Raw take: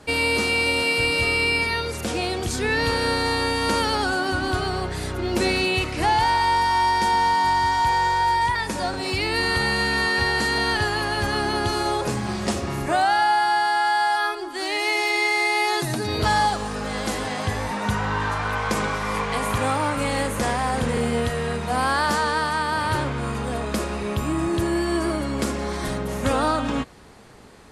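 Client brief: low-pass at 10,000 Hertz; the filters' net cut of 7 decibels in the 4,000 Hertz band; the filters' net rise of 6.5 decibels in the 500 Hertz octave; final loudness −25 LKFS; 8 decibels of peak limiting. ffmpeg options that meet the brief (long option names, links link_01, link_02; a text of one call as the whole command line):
ffmpeg -i in.wav -af "lowpass=10000,equalizer=frequency=500:width_type=o:gain=8,equalizer=frequency=4000:width_type=o:gain=-9,volume=-2.5dB,alimiter=limit=-16.5dB:level=0:latency=1" out.wav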